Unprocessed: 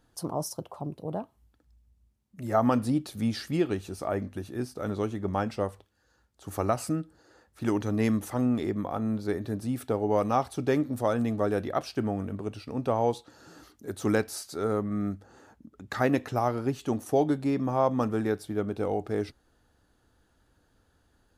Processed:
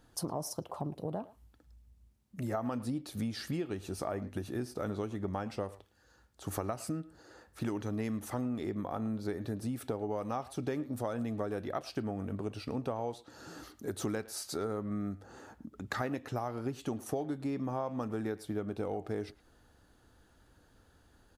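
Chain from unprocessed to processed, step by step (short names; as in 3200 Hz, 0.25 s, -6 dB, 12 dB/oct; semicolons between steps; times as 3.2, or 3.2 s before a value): compressor 6:1, threshold -36 dBFS, peak gain reduction 16.5 dB; speakerphone echo 0.11 s, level -18 dB; gain +3 dB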